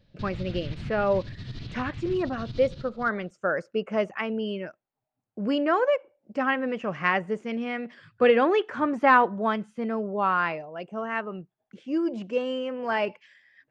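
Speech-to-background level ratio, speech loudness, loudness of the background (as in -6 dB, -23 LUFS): 12.5 dB, -27.0 LUFS, -39.5 LUFS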